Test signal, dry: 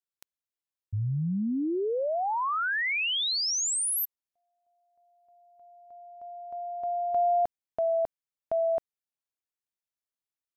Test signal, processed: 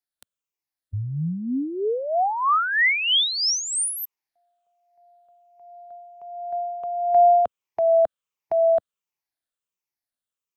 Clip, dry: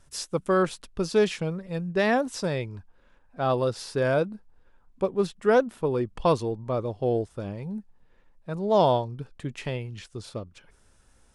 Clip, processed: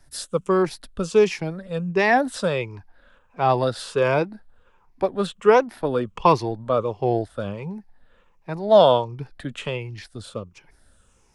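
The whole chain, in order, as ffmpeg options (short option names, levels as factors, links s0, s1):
-filter_complex "[0:a]afftfilt=real='re*pow(10,9/40*sin(2*PI*(0.76*log(max(b,1)*sr/1024/100)/log(2)-(-1.4)*(pts-256)/sr)))':imag='im*pow(10,9/40*sin(2*PI*(0.76*log(max(b,1)*sr/1024/100)/log(2)-(-1.4)*(pts-256)/sr)))':win_size=1024:overlap=0.75,acrossover=split=160|570|4300[s0][s1][s2][s3];[s2]dynaudnorm=f=230:g=17:m=2.11[s4];[s0][s1][s4][s3]amix=inputs=4:normalize=0,volume=1.12"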